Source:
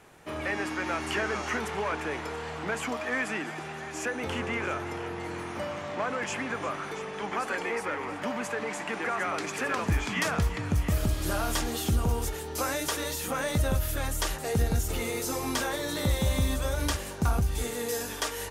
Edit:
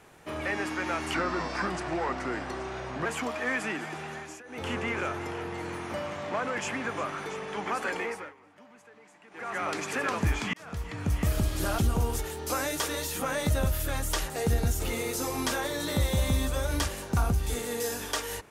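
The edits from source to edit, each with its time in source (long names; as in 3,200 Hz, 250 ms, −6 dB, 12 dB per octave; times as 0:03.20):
0:01.14–0:02.71: play speed 82%
0:03.81–0:04.36: duck −20.5 dB, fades 0.27 s
0:07.64–0:09.32: duck −22 dB, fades 0.36 s
0:10.19–0:10.86: fade in
0:11.44–0:11.87: remove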